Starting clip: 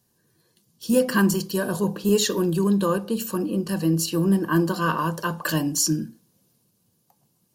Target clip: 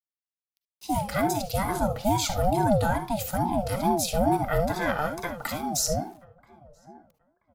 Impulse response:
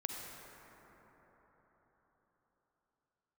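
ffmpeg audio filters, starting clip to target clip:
-filter_complex "[0:a]asettb=1/sr,asplit=3[a][b][c];[a]atrim=end=5.064[d];[b]atrim=start=5.06:end=5.72,asetpts=PTS-STARTPTS,afade=t=in:d=0.004:c=qsin,afade=t=out:st=0.656:d=0.004:c=qsin,acompressor=threshold=-27dB:ratio=5[e];[c]atrim=start=5.716[f];[d][e]acrossfade=d=0.004:c1=hsin:c2=qsin[g];[g][f]acrossfade=d=0.004:c1=qsin:c2=hsin,alimiter=limit=-13dB:level=0:latency=1:release=309,dynaudnorm=f=290:g=7:m=6dB,aeval=exprs='val(0)*gte(abs(val(0)),0.00531)':c=same,asplit=2[h][i];[i]adelay=981,lowpass=f=880:p=1,volume=-21dB,asplit=2[j][k];[k]adelay=981,lowpass=f=880:p=1,volume=0.31[l];[h][j][l]amix=inputs=3:normalize=0[m];[1:a]atrim=start_sample=2205,atrim=end_sample=3528[n];[m][n]afir=irnorm=-1:irlink=0,aeval=exprs='val(0)*sin(2*PI*420*n/s+420*0.3/2.3*sin(2*PI*2.3*n/s))':c=same,volume=-3dB"

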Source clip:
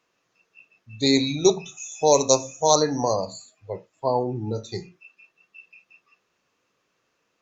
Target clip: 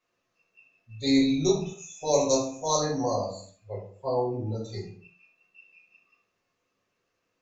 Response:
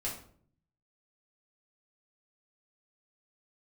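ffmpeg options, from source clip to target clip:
-filter_complex "[1:a]atrim=start_sample=2205,afade=t=out:st=0.37:d=0.01,atrim=end_sample=16758[a];[0:a][a]afir=irnorm=-1:irlink=0,asettb=1/sr,asplit=3[b][c][d];[b]atrim=end=1.124[e];[c]atrim=start=1.12:end=1.73,asetpts=PTS-STARTPTS,afade=t=in:d=0.004:c=qsin,afade=t=out:st=0.606:d=0.004:c=qsin,asubboost=boost=11:cutoff=230[f];[d]atrim=start=1.726[g];[e][f]acrossfade=d=0.004:c1=hsin:c2=qsin[h];[h][g]acrossfade=d=0.004:c1=qsin:c2=hsin,volume=-8dB"

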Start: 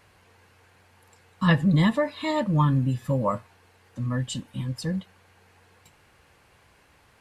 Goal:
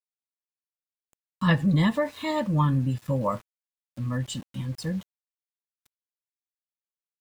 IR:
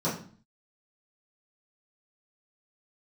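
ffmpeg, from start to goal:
-af "aeval=exprs='val(0)*gte(abs(val(0)),0.00708)':c=same,volume=-1.5dB"

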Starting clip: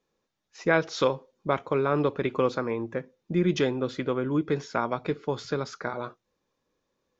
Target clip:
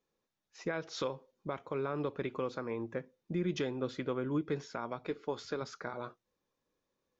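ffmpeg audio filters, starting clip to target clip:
-filter_complex "[0:a]asettb=1/sr,asplit=3[a][b][c];[a]atrim=end=5.044[d];[b]atrim=start=5.04:end=5.62,asetpts=PTS-STARTPTS,afade=t=in:d=0.004:c=qsin,afade=t=out:st=0.576:d=0.004:c=qsin,equalizer=f=140:t=o:w=0.77:g=-9[e];[c]atrim=start=5.616[f];[d][e]acrossfade=d=0.004:c1=hsin:c2=qsin[g];[g][f]acrossfade=d=0.004:c1=qsin:c2=hsin,alimiter=limit=-17.5dB:level=0:latency=1:release=226,volume=-6.5dB"

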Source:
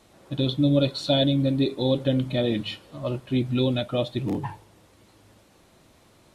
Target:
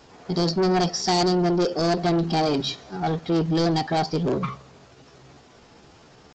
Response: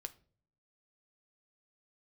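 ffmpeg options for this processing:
-af "asetrate=57191,aresample=44100,atempo=0.771105,aresample=16000,asoftclip=type=tanh:threshold=-24dB,aresample=44100,volume=6.5dB"

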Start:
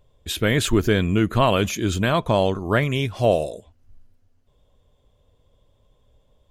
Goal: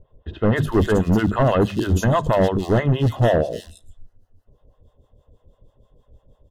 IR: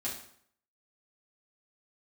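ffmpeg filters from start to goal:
-filter_complex "[0:a]tiltshelf=f=1.3k:g=6,bandreject=f=50:t=h:w=6,bandreject=f=100:t=h:w=6,bandreject=f=150:t=h:w=6,bandreject=f=200:t=h:w=6,bandreject=f=250:t=h:w=6,acrossover=split=630[a][b];[a]aeval=exprs='val(0)*(1-1/2+1/2*cos(2*PI*6.2*n/s))':c=same[c];[b]aeval=exprs='val(0)*(1-1/2-1/2*cos(2*PI*6.2*n/s))':c=same[d];[c][d]amix=inputs=2:normalize=0,asoftclip=type=hard:threshold=-18.5dB,asuperstop=centerf=2300:order=8:qfactor=5.9,acrossover=split=3200[e][f];[f]adelay=290[g];[e][g]amix=inputs=2:normalize=0,asplit=2[h][i];[1:a]atrim=start_sample=2205,asetrate=40572,aresample=44100[j];[i][j]afir=irnorm=-1:irlink=0,volume=-24.5dB[k];[h][k]amix=inputs=2:normalize=0,volume=6dB"

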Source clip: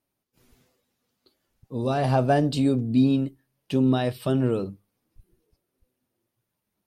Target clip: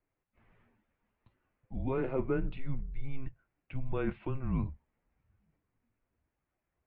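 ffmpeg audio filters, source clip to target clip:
-af "areverse,acompressor=threshold=-27dB:ratio=6,areverse,highpass=f=210:t=q:w=0.5412,highpass=f=210:t=q:w=1.307,lowpass=f=2.7k:t=q:w=0.5176,lowpass=f=2.7k:t=q:w=0.7071,lowpass=f=2.7k:t=q:w=1.932,afreqshift=-270"

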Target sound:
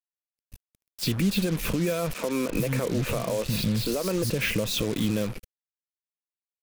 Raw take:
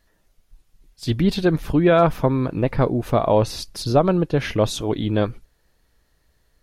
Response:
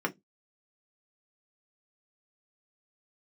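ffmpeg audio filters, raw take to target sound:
-filter_complex "[0:a]lowshelf=f=150:g=-3,asettb=1/sr,asplit=3[a][b][c];[a]atrim=end=2.134[d];[b]atrim=start=2.13:end=4.3,asetpts=PTS-STARTPTS,afade=t=in:d=0.004:c=qsin,afade=t=out:st=2.166:d=0.004:c=qsin,acrossover=split=220|4100[e][f][g];[e]adelay=360[h];[g]adelay=470[i];[h][f][i]amix=inputs=3:normalize=0,atrim=end_sample=95697[j];[c]atrim=start=4.296[k];[d][j]acrossfade=d=0.004:c1=hsin:c2=qsin[l];[l][k]acrossfade=d=0.004:c1=qsin:c2=hsin,acompressor=threshold=-23dB:ratio=12,alimiter=limit=-23.5dB:level=0:latency=1:release=39,equalizer=f=200:t=o:w=0.33:g=9,equalizer=f=500:t=o:w=0.33:g=8,equalizer=f=800:t=o:w=0.33:g=-8,equalizer=f=2.5k:t=o:w=0.33:g=10,acrossover=split=170|4600[m][n][o];[m]acompressor=threshold=-33dB:ratio=4[p];[n]acompressor=threshold=-31dB:ratio=4[q];[o]acompressor=threshold=-52dB:ratio=4[r];[p][q][r]amix=inputs=3:normalize=0,acrusher=bits=6:mix=0:aa=0.5,crystalizer=i=1.5:c=0,volume=5.5dB"

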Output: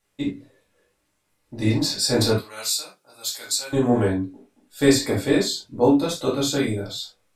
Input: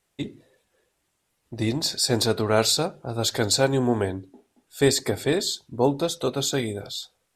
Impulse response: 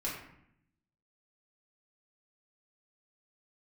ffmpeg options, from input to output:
-filter_complex "[0:a]asettb=1/sr,asplit=3[a][b][c];[a]atrim=end=2.364[d];[b]atrim=start=2.36:end=3.73,asetpts=PTS-STARTPTS,afade=t=in:d=0.004:c=qsin,afade=t=out:st=1.366:d=0.004:c=qsin,aderivative[e];[c]atrim=start=3.726[f];[d][e]acrossfade=d=0.004:c1=hsin:c2=qsin[g];[g][f]acrossfade=d=0.004:c1=qsin:c2=hsin[h];[1:a]atrim=start_sample=2205,atrim=end_sample=3969[i];[h][i]afir=irnorm=-1:irlink=0"

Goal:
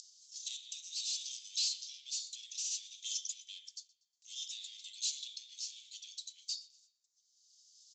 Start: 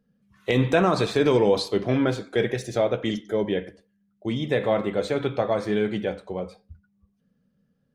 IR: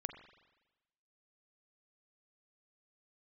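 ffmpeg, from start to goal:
-filter_complex "[0:a]agate=range=-26dB:threshold=-55dB:ratio=16:detection=peak,acompressor=mode=upward:threshold=-31dB:ratio=2.5,alimiter=limit=-16dB:level=0:latency=1:release=30,acompressor=threshold=-34dB:ratio=2.5,aexciter=amount=14.4:drive=8.6:freq=4.3k,aresample=16000,asoftclip=type=tanh:threshold=-32.5dB,aresample=44100,asuperpass=centerf=4800:order=12:qfactor=0.89,aecho=1:1:120|240|360:0.0841|0.0353|0.0148,asplit=2[a][b];[1:a]atrim=start_sample=2205[c];[b][c]afir=irnorm=-1:irlink=0,volume=-3.5dB[d];[a][d]amix=inputs=2:normalize=0,tremolo=f=0.61:d=0.47,volume=-2dB"

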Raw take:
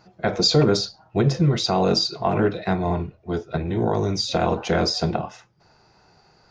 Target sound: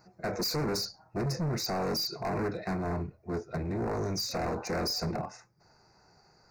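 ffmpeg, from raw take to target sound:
-filter_complex "[0:a]acrossover=split=960[a][b];[b]crystalizer=i=1:c=0[c];[a][c]amix=inputs=2:normalize=0,volume=22.5dB,asoftclip=hard,volume=-22.5dB,asuperstop=centerf=3200:order=4:qfactor=1.6,volume=-6dB"

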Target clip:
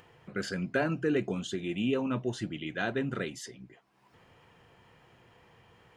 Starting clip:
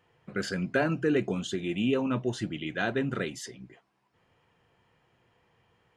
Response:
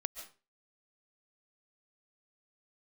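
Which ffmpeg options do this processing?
-af "acompressor=mode=upward:threshold=-46dB:ratio=2.5,volume=-2.5dB"

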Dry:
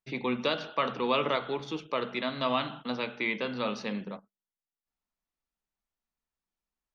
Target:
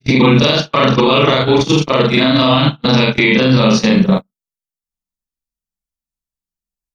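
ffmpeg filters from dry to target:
-af "afftfilt=real='re':imag='-im':win_size=4096:overlap=0.75,acompressor=threshold=-44dB:ratio=3,agate=range=-39dB:threshold=-47dB:ratio=16:detection=peak,bass=f=250:g=13,treble=f=4k:g=12,alimiter=level_in=35.5dB:limit=-1dB:release=50:level=0:latency=1,volume=-1dB"

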